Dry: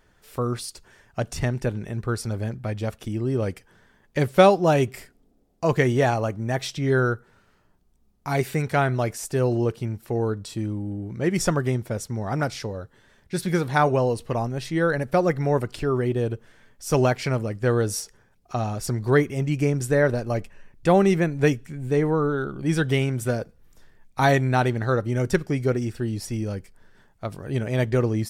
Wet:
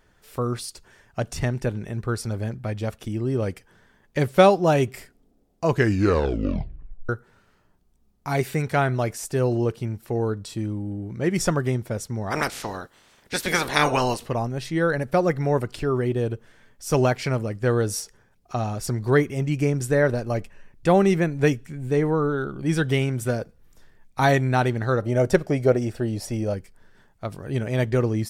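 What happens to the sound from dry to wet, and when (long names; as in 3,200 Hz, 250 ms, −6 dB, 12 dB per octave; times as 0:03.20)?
0:05.68: tape stop 1.41 s
0:12.30–0:14.27: ceiling on every frequency bin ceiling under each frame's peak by 23 dB
0:25.02–0:26.54: parametric band 630 Hz +12.5 dB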